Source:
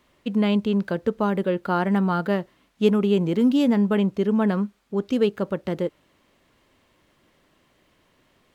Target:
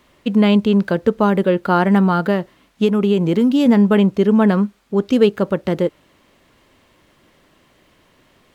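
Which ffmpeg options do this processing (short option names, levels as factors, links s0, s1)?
-filter_complex "[0:a]asettb=1/sr,asplit=3[s0][s1][s2];[s0]atrim=end=2.074[s3];[s1]atrim=start=2.07:end=3.66,asetpts=PTS-STARTPTS,afade=t=in:d=0.004:c=qsin,afade=t=out:st=1.586:d=0.004:c=qsin,acompressor=threshold=0.112:ratio=6[s4];[s2]atrim=start=3.656[s5];[s3][s4]acrossfade=d=0.004:c1=hsin:c2=qsin[s6];[s6][s5]acrossfade=d=0.004:c1=qsin:c2=hsin,volume=2.37"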